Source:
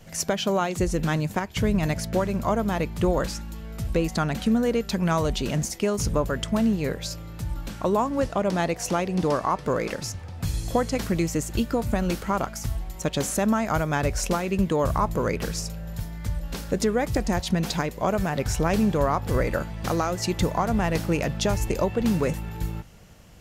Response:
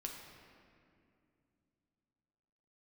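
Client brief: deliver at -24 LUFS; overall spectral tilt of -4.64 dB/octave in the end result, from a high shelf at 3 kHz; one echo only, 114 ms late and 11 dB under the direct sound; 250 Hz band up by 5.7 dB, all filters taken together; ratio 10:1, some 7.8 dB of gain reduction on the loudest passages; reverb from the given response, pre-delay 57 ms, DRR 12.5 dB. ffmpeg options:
-filter_complex "[0:a]equalizer=f=250:t=o:g=7.5,highshelf=f=3000:g=8,acompressor=threshold=0.1:ratio=10,aecho=1:1:114:0.282,asplit=2[s0][s1];[1:a]atrim=start_sample=2205,adelay=57[s2];[s1][s2]afir=irnorm=-1:irlink=0,volume=0.299[s3];[s0][s3]amix=inputs=2:normalize=0,volume=1.19"

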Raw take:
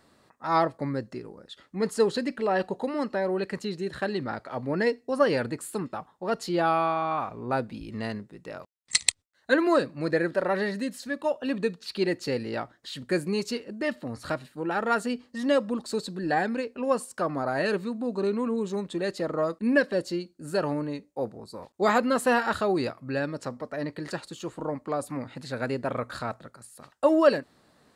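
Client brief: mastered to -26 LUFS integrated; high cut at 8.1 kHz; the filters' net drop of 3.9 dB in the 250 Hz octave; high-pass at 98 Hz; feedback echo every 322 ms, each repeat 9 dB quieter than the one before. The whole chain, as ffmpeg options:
-af "highpass=98,lowpass=8100,equalizer=f=250:t=o:g=-5,aecho=1:1:322|644|966|1288:0.355|0.124|0.0435|0.0152,volume=1.41"

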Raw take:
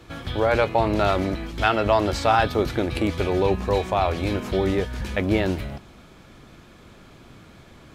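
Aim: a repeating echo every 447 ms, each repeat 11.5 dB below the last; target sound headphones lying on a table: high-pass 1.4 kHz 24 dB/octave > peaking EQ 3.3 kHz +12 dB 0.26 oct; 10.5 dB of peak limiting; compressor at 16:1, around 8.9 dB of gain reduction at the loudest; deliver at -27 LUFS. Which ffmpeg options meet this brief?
-af "acompressor=threshold=0.0708:ratio=16,alimiter=limit=0.0891:level=0:latency=1,highpass=f=1400:w=0.5412,highpass=f=1400:w=1.3066,equalizer=f=3300:t=o:w=0.26:g=12,aecho=1:1:447|894|1341:0.266|0.0718|0.0194,volume=2.99"

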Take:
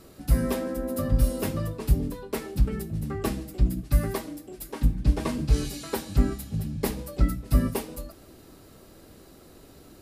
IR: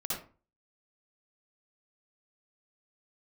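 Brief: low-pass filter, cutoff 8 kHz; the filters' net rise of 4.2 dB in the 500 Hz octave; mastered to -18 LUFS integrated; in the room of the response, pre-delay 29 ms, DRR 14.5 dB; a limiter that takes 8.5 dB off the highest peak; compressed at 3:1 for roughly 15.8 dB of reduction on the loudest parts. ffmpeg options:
-filter_complex "[0:a]lowpass=8000,equalizer=f=500:t=o:g=5,acompressor=threshold=0.0141:ratio=3,alimiter=level_in=1.78:limit=0.0631:level=0:latency=1,volume=0.562,asplit=2[s0][s1];[1:a]atrim=start_sample=2205,adelay=29[s2];[s1][s2]afir=irnorm=-1:irlink=0,volume=0.126[s3];[s0][s3]amix=inputs=2:normalize=0,volume=14.1"

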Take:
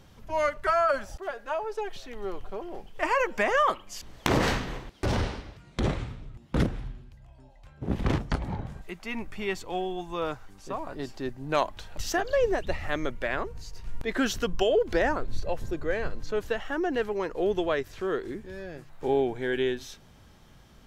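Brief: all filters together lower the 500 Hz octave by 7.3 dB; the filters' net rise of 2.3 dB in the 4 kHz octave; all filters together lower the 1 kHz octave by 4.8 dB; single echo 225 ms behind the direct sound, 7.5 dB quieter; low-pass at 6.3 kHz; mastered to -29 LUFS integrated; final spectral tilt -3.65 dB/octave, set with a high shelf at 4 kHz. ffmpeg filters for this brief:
-af "lowpass=6300,equalizer=f=500:t=o:g=-8.5,equalizer=f=1000:t=o:g=-4,highshelf=f=4000:g=-3.5,equalizer=f=4000:t=o:g=6,aecho=1:1:225:0.422,volume=1.5"

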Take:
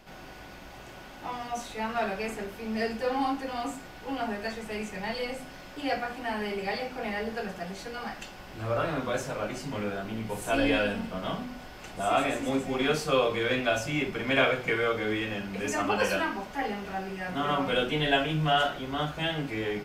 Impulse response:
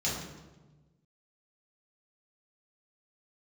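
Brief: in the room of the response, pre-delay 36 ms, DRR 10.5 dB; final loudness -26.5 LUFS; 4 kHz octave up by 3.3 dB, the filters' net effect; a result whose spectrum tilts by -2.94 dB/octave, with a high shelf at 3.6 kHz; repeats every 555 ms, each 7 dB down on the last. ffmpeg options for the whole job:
-filter_complex "[0:a]highshelf=f=3600:g=-5.5,equalizer=f=4000:t=o:g=8,aecho=1:1:555|1110|1665|2220|2775:0.447|0.201|0.0905|0.0407|0.0183,asplit=2[s0][s1];[1:a]atrim=start_sample=2205,adelay=36[s2];[s1][s2]afir=irnorm=-1:irlink=0,volume=0.126[s3];[s0][s3]amix=inputs=2:normalize=0,volume=1.19"

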